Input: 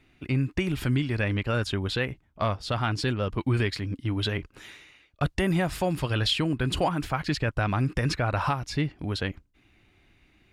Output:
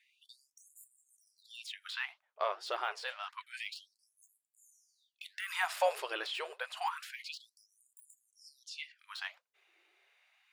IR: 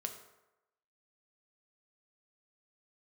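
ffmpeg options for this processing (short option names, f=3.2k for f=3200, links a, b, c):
-filter_complex "[0:a]asettb=1/sr,asplit=3[a][b][c];[a]atrim=end=1.934[d];[b]atrim=start=1.93:end=2.57,asetpts=PTS-STARTPTS,afade=t=in:d=0.004:c=qsin,afade=t=out:st=0.636:d=0.004:c=qsin,highshelf=f=7k:g=-8.5[e];[c]atrim=start=2.566[f];[d][e]acrossfade=d=0.004:c1=hsin:c2=qsin[g];[g][f]acrossfade=d=0.004:c1=qsin:c2=hsin,deesser=0.95,asubboost=boost=10.5:cutoff=100,asplit=3[h][i][j];[h]afade=t=out:st=5.48:d=0.02[k];[i]acontrast=70,afade=t=in:st=5.48:d=0.02,afade=t=out:st=5.99:d=0.02[l];[j]afade=t=in:st=5.99:d=0.02[m];[k][l][m]amix=inputs=3:normalize=0,asettb=1/sr,asplit=3[n][o][p];[n]atrim=end=8.304[q];[o]atrim=start=8.3:end=8.99,asetpts=PTS-STARTPTS,afade=t=in:d=0.004:c=qsin,afade=t=out:st=0.686:d=0.004:c=qsin,lowpass=10k[r];[p]atrim=start=8.986[s];[q][r]acrossfade=d=0.004:c1=hsin:c2=qsin[t];[t][s]acrossfade=d=0.004:c1=qsin:c2=hsin,flanger=delay=2.2:depth=9.5:regen=81:speed=1.8:shape=triangular,afftfilt=real='re*gte(b*sr/1024,330*pow(7000/330,0.5+0.5*sin(2*PI*0.28*pts/sr)))':imag='im*gte(b*sr/1024,330*pow(7000/330,0.5+0.5*sin(2*PI*0.28*pts/sr)))':win_size=1024:overlap=0.75"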